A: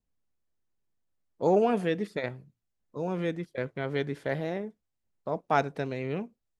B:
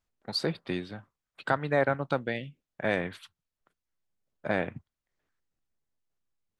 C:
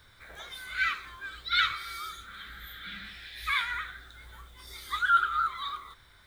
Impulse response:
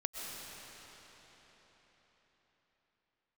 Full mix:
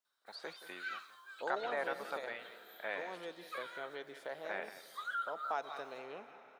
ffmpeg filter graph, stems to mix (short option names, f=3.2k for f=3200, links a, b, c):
-filter_complex "[0:a]volume=-2.5dB,asplit=3[a][b][c];[b]volume=-18dB[d];[c]volume=-19.5dB[e];[1:a]volume=-8.5dB,asplit=2[f][g];[g]volume=-14dB[h];[2:a]agate=range=-12dB:threshold=-53dB:ratio=16:detection=peak,bandreject=f=3.5k:w=14,adelay=50,volume=-8.5dB[i];[a][i]amix=inputs=2:normalize=0,equalizer=f=2.1k:w=2.9:g=-13.5,acompressor=threshold=-36dB:ratio=3,volume=0dB[j];[3:a]atrim=start_sample=2205[k];[d][k]afir=irnorm=-1:irlink=0[l];[e][h]amix=inputs=2:normalize=0,aecho=0:1:175:1[m];[f][j][l][m]amix=inputs=4:normalize=0,highpass=700,acrossover=split=3000[n][o];[o]acompressor=threshold=-54dB:ratio=4:attack=1:release=60[p];[n][p]amix=inputs=2:normalize=0"